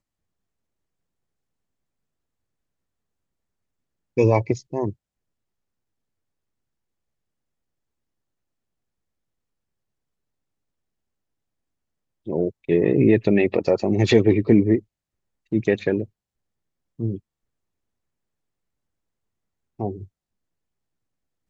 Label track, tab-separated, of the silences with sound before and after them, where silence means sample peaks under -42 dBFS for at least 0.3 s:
4.930000	12.270000	silence
14.800000	15.520000	silence
16.060000	16.990000	silence
17.190000	19.790000	silence